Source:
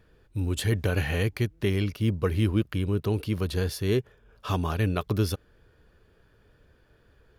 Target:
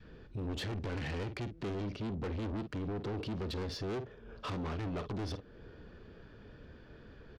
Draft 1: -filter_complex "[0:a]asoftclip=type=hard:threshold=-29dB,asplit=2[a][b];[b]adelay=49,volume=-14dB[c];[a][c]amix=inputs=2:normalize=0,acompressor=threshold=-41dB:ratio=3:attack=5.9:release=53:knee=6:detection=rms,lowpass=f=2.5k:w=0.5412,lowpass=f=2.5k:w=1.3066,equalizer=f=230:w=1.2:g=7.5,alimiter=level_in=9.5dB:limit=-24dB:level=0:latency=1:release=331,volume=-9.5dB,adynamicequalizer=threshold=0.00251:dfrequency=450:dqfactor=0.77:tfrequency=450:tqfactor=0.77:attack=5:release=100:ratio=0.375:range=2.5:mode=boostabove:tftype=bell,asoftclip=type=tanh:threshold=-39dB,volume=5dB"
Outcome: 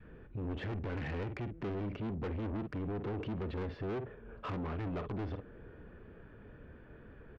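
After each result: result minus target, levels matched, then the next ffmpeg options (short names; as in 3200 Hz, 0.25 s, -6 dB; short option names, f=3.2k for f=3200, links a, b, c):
4000 Hz band -9.0 dB; compressor: peak gain reduction +9 dB
-filter_complex "[0:a]asoftclip=type=hard:threshold=-29dB,asplit=2[a][b];[b]adelay=49,volume=-14dB[c];[a][c]amix=inputs=2:normalize=0,acompressor=threshold=-41dB:ratio=3:attack=5.9:release=53:knee=6:detection=rms,lowpass=f=5.5k:w=0.5412,lowpass=f=5.5k:w=1.3066,equalizer=f=230:w=1.2:g=7.5,alimiter=level_in=9.5dB:limit=-24dB:level=0:latency=1:release=331,volume=-9.5dB,adynamicequalizer=threshold=0.00251:dfrequency=450:dqfactor=0.77:tfrequency=450:tqfactor=0.77:attack=5:release=100:ratio=0.375:range=2.5:mode=boostabove:tftype=bell,asoftclip=type=tanh:threshold=-39dB,volume=5dB"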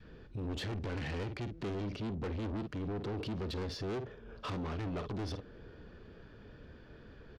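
compressor: peak gain reduction +9 dB
-filter_complex "[0:a]asoftclip=type=hard:threshold=-29dB,lowpass=f=5.5k:w=0.5412,lowpass=f=5.5k:w=1.3066,equalizer=f=230:w=1.2:g=7.5,asplit=2[a][b];[b]adelay=49,volume=-14dB[c];[a][c]amix=inputs=2:normalize=0,alimiter=level_in=9.5dB:limit=-24dB:level=0:latency=1:release=331,volume=-9.5dB,adynamicequalizer=threshold=0.00251:dfrequency=450:dqfactor=0.77:tfrequency=450:tqfactor=0.77:attack=5:release=100:ratio=0.375:range=2.5:mode=boostabove:tftype=bell,asoftclip=type=tanh:threshold=-39dB,volume=5dB"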